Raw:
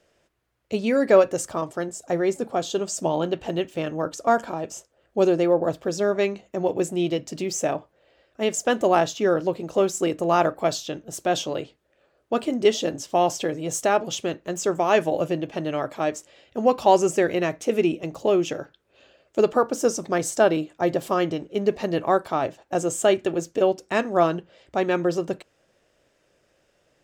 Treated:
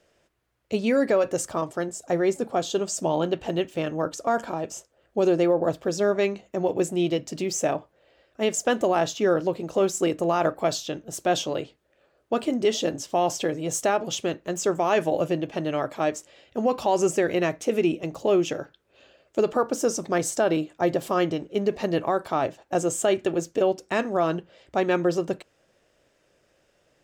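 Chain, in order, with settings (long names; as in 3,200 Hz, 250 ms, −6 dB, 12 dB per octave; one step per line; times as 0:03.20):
brickwall limiter −12.5 dBFS, peak gain reduction 7.5 dB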